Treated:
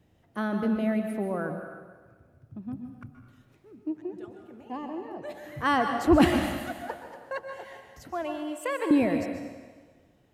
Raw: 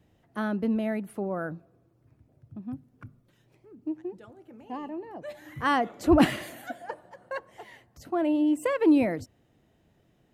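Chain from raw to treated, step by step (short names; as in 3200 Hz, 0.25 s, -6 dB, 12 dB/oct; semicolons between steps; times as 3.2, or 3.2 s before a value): 8.11–8.91 HPF 640 Hz 12 dB/oct; on a send: reverb RT60 1.5 s, pre-delay 0.122 s, DRR 5 dB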